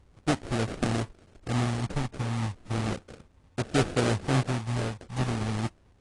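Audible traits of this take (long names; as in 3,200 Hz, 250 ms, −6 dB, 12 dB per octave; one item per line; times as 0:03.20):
a buzz of ramps at a fixed pitch in blocks of 8 samples
phaser sweep stages 12, 0.35 Hz, lowest notch 340–2,600 Hz
aliases and images of a low sample rate 1,000 Hz, jitter 20%
AAC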